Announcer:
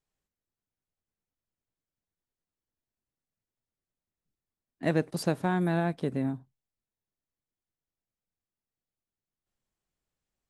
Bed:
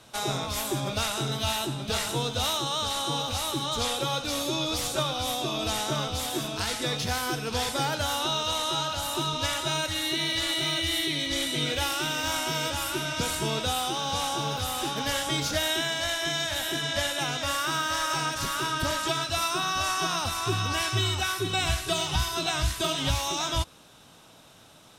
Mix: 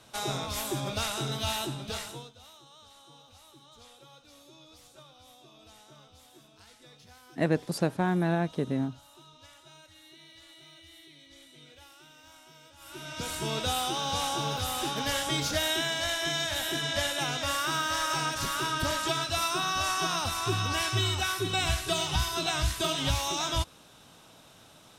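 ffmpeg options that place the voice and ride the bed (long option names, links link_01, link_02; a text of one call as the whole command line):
ffmpeg -i stem1.wav -i stem2.wav -filter_complex "[0:a]adelay=2550,volume=0.5dB[link_01];[1:a]volume=21dB,afade=type=out:start_time=1.66:duration=0.67:silence=0.0749894,afade=type=in:start_time=12.77:duration=0.93:silence=0.0630957[link_02];[link_01][link_02]amix=inputs=2:normalize=0" out.wav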